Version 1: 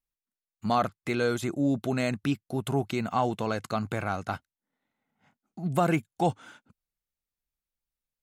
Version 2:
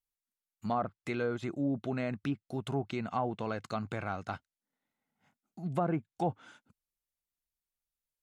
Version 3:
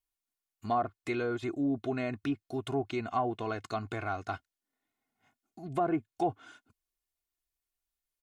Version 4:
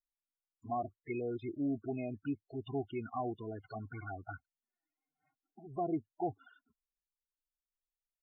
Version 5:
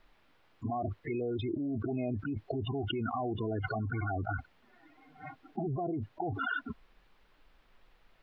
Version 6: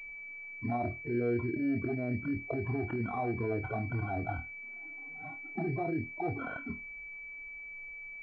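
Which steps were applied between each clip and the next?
low-pass that closes with the level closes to 1.2 kHz, closed at -21 dBFS; treble shelf 6.6 kHz +7.5 dB; trim -6 dB
comb 2.8 ms, depth 65%
touch-sensitive flanger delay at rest 6.7 ms, full sweep at -28.5 dBFS; loudest bins only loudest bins 16; trim -4 dB
distance through air 390 m; level flattener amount 100%; trim -2.5 dB
flutter echo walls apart 4.3 m, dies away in 0.22 s; class-D stage that switches slowly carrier 2.3 kHz

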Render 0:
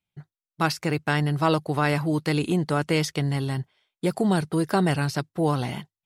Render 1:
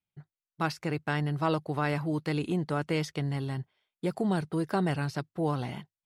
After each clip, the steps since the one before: treble shelf 4.6 kHz -7.5 dB; trim -6 dB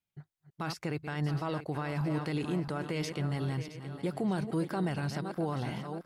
backward echo that repeats 335 ms, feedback 59%, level -11.5 dB; peak limiter -23.5 dBFS, peak gain reduction 9.5 dB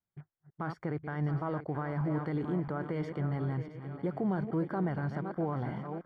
rattle on loud lows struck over -45 dBFS, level -45 dBFS; Savitzky-Golay filter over 41 samples

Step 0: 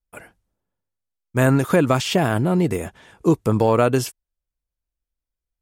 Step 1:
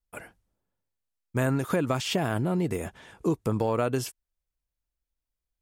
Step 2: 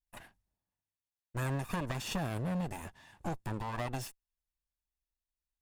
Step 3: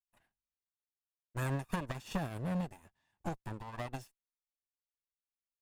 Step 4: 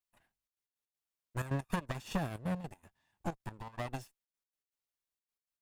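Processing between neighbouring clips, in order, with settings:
compression 2:1, threshold -27 dBFS, peak gain reduction 8.5 dB; trim -1.5 dB
comb filter that takes the minimum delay 1.1 ms; trim -7 dB
upward expansion 2.5:1, over -47 dBFS; trim +2 dB
trance gate "xxxxx.x.x." 159 bpm -12 dB; trim +1.5 dB

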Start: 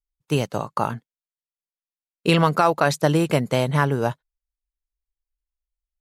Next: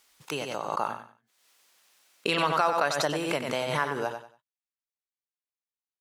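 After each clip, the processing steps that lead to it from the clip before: frequency weighting A; feedback delay 93 ms, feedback 26%, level -7.5 dB; swell ahead of each attack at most 48 dB/s; trim -6.5 dB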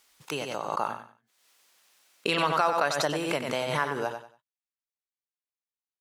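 no audible change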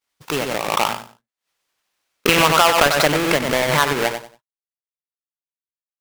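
square wave that keeps the level; dynamic bell 2.1 kHz, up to +6 dB, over -36 dBFS, Q 1; expander -48 dBFS; trim +5 dB

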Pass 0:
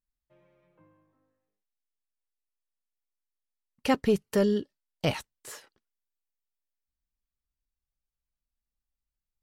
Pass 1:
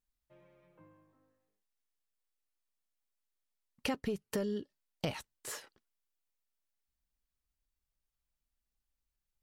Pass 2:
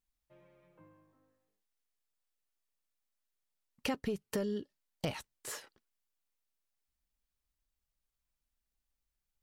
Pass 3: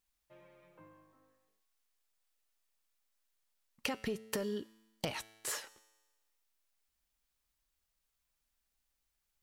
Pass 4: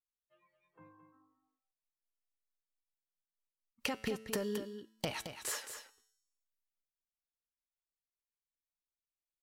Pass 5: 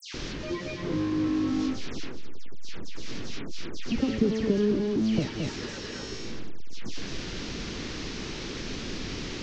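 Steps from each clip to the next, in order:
compression 6:1, threshold -34 dBFS, peak gain reduction 14.5 dB; trim +1 dB
one-sided wavefolder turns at -24.5 dBFS
bass shelf 400 Hz -7 dB; compression, threshold -39 dBFS, peak gain reduction 6.5 dB; feedback comb 110 Hz, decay 1.2 s, harmonics all, mix 50%; trim +11.5 dB
spectral noise reduction 23 dB; delay 219 ms -9 dB
one-bit delta coder 32 kbps, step -32.5 dBFS; resonant low shelf 500 Hz +13 dB, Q 1.5; phase dispersion lows, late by 144 ms, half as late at 2.5 kHz

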